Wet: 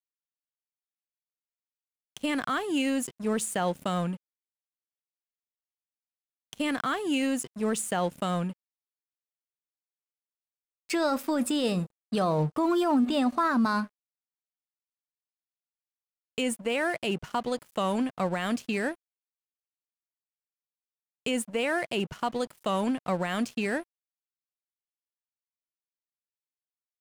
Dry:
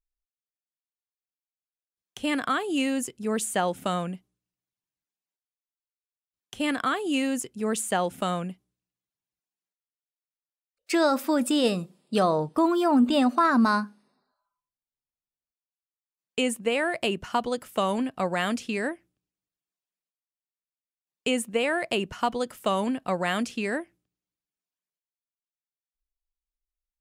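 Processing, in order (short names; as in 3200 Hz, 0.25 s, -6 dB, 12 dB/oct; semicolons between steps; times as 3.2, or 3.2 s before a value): bell 150 Hz +8.5 dB 0.44 oct; vibrato 1.1 Hz 6.9 cents; crossover distortion -44 dBFS; limiter -18 dBFS, peak gain reduction 6 dB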